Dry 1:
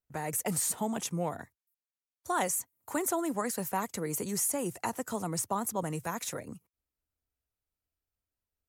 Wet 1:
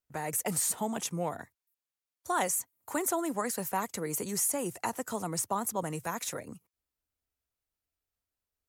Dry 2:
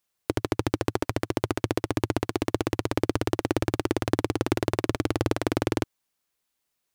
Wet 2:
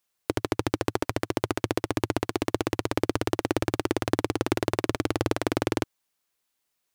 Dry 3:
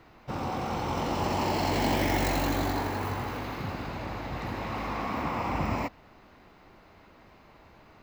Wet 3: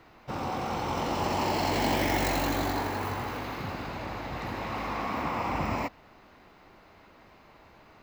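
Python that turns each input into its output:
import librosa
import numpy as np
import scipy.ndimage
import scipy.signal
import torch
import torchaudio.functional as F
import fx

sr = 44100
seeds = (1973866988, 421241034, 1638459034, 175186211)

y = fx.low_shelf(x, sr, hz=280.0, db=-4.0)
y = F.gain(torch.from_numpy(y), 1.0).numpy()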